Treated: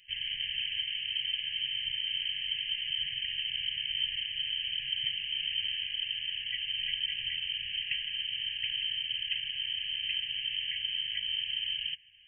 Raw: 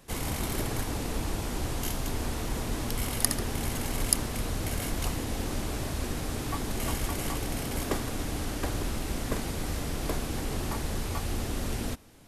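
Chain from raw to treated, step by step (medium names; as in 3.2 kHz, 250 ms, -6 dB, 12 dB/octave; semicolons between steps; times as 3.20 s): 5.31–5.84 s: doubling 29 ms -6.5 dB; frequency inversion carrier 3.1 kHz; brick-wall FIR band-stop 170–1600 Hz; trim -4.5 dB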